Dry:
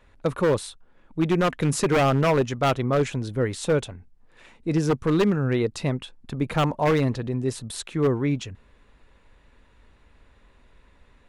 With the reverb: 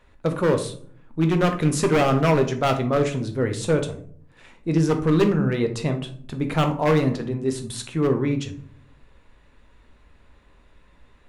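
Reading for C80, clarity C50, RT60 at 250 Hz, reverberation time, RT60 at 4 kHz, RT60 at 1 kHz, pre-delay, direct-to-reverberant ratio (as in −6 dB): 15.5 dB, 11.0 dB, 0.85 s, 0.55 s, 0.30 s, 0.50 s, 12 ms, 5.5 dB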